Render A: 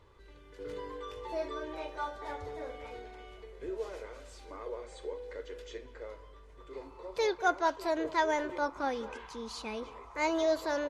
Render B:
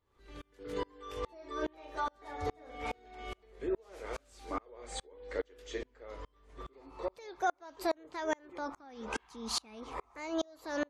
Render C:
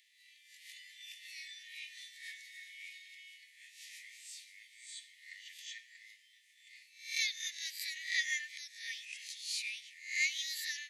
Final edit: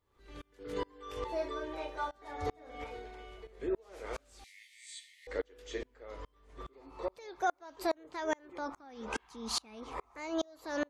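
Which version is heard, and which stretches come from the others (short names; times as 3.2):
B
1.24–2.11 from A
2.84–3.47 from A
4.44–5.27 from C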